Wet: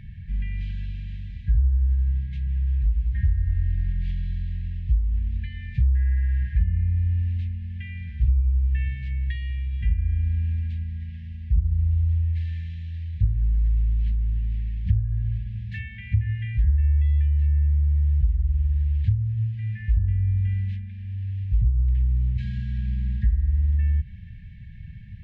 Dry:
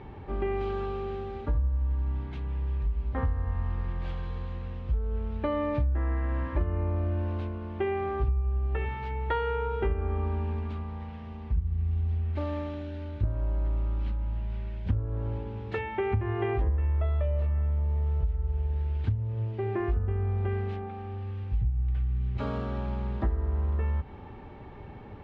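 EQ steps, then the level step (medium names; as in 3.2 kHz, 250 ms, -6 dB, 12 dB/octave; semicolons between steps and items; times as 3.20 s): brick-wall FIR band-stop 210–1600 Hz; bass shelf 240 Hz +7.5 dB; 0.0 dB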